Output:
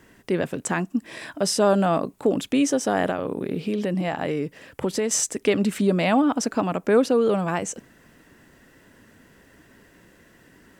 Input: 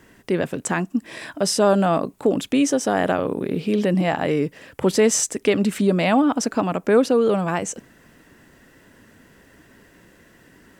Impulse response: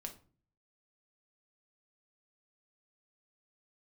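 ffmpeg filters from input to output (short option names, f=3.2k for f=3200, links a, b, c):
-filter_complex "[0:a]asettb=1/sr,asplit=3[a][b][c];[a]atrim=end=3.064[d];[b]atrim=start=3.06:end=5.11,asetpts=PTS-STARTPTS,afade=t=in:d=0.004:c=qsin,afade=t=out:st=2.046:d=0.004:c=qsin,acompressor=threshold=-20dB:ratio=4[e];[c]atrim=start=5.106[f];[d][e]acrossfade=d=0.004:c1=hsin:c2=qsin[g];[g][f]acrossfade=d=0.004:c1=qsin:c2=hsin,volume=-2dB"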